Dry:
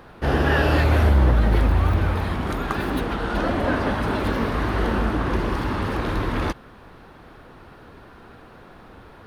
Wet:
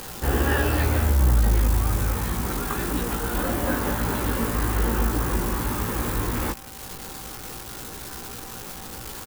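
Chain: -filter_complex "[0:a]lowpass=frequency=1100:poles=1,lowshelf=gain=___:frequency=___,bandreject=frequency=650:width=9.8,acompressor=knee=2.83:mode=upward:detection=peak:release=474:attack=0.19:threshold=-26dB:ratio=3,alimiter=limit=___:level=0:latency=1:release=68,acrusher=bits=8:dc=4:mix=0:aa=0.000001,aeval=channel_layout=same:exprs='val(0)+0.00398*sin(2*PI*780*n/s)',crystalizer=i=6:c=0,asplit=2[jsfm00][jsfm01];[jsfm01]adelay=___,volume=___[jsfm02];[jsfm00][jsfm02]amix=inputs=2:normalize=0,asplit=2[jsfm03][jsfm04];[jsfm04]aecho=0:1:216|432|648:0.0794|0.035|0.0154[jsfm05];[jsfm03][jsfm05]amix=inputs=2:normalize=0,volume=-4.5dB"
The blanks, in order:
3, 110, -10.5dB, 17, -5dB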